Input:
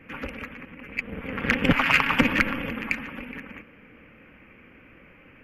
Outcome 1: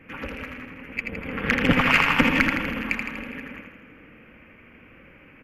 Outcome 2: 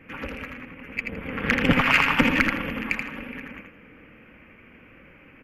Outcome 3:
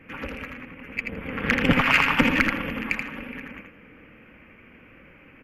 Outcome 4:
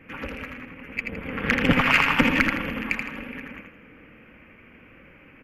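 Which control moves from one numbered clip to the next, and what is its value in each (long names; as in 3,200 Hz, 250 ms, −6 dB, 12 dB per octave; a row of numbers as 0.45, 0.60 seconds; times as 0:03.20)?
repeating echo, feedback: 61, 25, 17, 39%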